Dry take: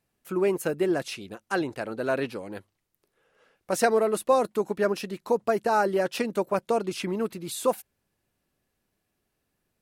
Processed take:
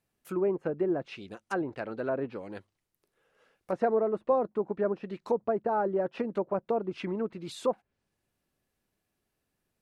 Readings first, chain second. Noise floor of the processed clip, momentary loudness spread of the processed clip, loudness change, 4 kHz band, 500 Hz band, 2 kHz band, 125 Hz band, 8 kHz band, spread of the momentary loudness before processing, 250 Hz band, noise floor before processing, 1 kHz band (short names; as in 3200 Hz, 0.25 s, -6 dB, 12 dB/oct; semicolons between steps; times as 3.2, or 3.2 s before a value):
-83 dBFS, 9 LU, -4.0 dB, under -10 dB, -4.0 dB, -9.5 dB, -3.5 dB, under -15 dB, 10 LU, -3.5 dB, -79 dBFS, -5.5 dB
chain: treble ducked by the level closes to 990 Hz, closed at -23.5 dBFS; gain -3.5 dB